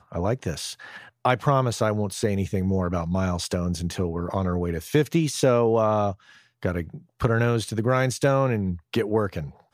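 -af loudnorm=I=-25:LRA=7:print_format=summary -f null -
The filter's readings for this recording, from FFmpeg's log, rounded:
Input Integrated:    -24.5 LUFS
Input True Peak:      -5.1 dBTP
Input LRA:             1.7 LU
Input Threshold:     -34.9 LUFS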